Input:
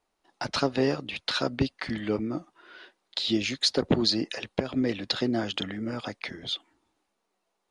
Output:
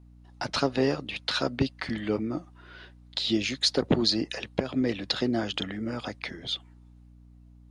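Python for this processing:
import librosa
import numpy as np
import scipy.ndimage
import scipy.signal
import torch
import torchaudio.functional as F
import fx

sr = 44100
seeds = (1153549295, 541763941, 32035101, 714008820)

y = fx.add_hum(x, sr, base_hz=60, snr_db=22)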